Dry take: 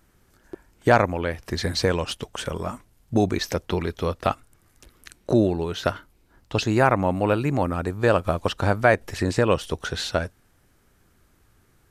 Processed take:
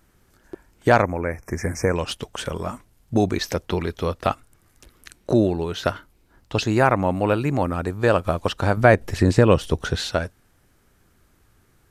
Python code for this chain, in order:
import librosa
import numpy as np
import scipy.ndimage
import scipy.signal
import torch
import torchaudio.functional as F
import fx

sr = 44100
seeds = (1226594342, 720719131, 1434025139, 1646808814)

y = fx.ellip_bandstop(x, sr, low_hz=2300.0, high_hz=5600.0, order=3, stop_db=40, at=(1.02, 1.96))
y = fx.low_shelf(y, sr, hz=410.0, db=7.5, at=(8.77, 9.96))
y = F.gain(torch.from_numpy(y), 1.0).numpy()